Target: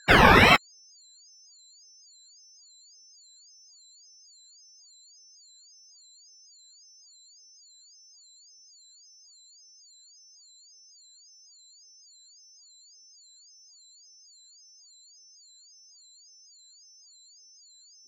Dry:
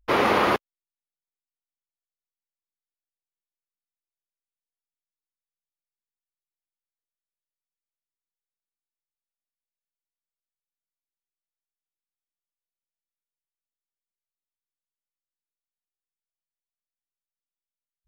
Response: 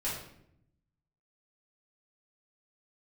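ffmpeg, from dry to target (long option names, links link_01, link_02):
-af "afftfilt=real='re*pow(10,23/40*sin(2*PI*(1.5*log(max(b,1)*sr/1024/100)/log(2)-(-2.7)*(pts-256)/sr)))':imag='im*pow(10,23/40*sin(2*PI*(1.5*log(max(b,1)*sr/1024/100)/log(2)-(-2.7)*(pts-256)/sr)))':win_size=1024:overlap=0.75,aeval=exprs='val(0)+0.00251*sin(2*PI*5700*n/s)':channel_layout=same,aeval=exprs='val(0)*sin(2*PI*1000*n/s+1000*0.7/1.8*sin(2*PI*1.8*n/s))':channel_layout=same,volume=2.5dB"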